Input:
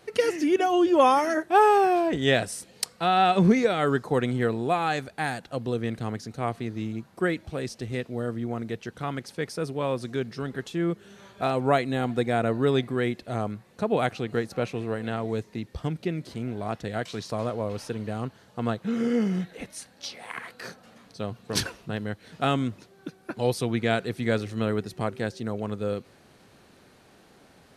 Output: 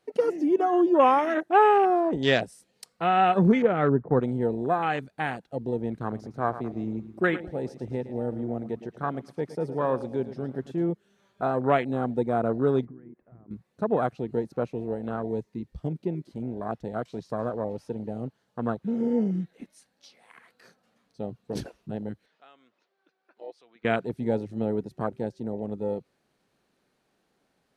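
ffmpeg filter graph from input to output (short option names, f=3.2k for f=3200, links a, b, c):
-filter_complex "[0:a]asettb=1/sr,asplit=3[a][b][c];[a]atrim=end=3.624[d];[b]atrim=start=3.62:end=4.2,asetpts=PTS-STARTPTS,afade=t=in:d=0.004:c=qsin,afade=t=out:st=0.576:d=0.004:c=qsin,lowpass=f=1.9k:w=0.5412,lowpass=f=1.9k:w=1.3066,equalizer=f=66:w=0.31:g=7[e];[c]atrim=start=4.196[f];[d][e]acrossfade=d=0.004:c1=hsin:c2=qsin[g];[g][f]acrossfade=d=0.004:c1=qsin:c2=hsin,asettb=1/sr,asplit=3[h][i][j];[h]atrim=end=5.904[k];[i]atrim=start=5.9:end=10.89,asetpts=PTS-STARTPTS,afade=t=in:d=0.004:c=qsin,afade=t=out:st=4.986:d=0.004:c=qsin,equalizer=f=1.3k:t=o:w=2:g=4.5,aecho=1:1:110|220|330|440|550|660:0.237|0.13|0.0717|0.0395|0.0217|0.0119,atrim=end_sample=220059[l];[j]atrim=start=10.886[m];[k][l]acrossfade=d=0.004:c1=hsin:c2=qsin[n];[n][m]acrossfade=d=0.004:c1=qsin:c2=hsin,asettb=1/sr,asplit=3[o][p][q];[o]atrim=end=12.854[r];[p]atrim=start=12.85:end=13.51,asetpts=PTS-STARTPTS,afade=t=in:d=0.004:c=qsin,afade=t=out:st=0.656:d=0.004:c=qsin,acompressor=threshold=-37dB:ratio=12:attack=3.2:release=140:knee=1:detection=peak,lowpass=f=1.7k:w=0.5412,lowpass=f=1.7k:w=1.3066[s];[q]atrim=start=13.506[t];[r][s]acrossfade=d=0.004:c1=hsin:c2=qsin[u];[u][t]acrossfade=d=0.004:c1=qsin:c2=hsin,asettb=1/sr,asplit=3[v][w][x];[v]atrim=end=22.264[y];[w]atrim=start=22.26:end=23.85,asetpts=PTS-STARTPTS,afade=t=in:d=0.004:c=qsin,afade=t=out:st=1.586:d=0.004:c=qsin,highpass=550,lowpass=4.2k,acompressor=threshold=-52dB:ratio=1.5:attack=3.2:release=140:knee=1:detection=peak[z];[x]atrim=start=23.846[aa];[y][z]acrossfade=d=0.004:c1=hsin:c2=qsin[ab];[ab][aa]acrossfade=d=0.004:c1=qsin:c2=hsin,afwtdn=0.0355,equalizer=f=90:t=o:w=0.53:g=-11"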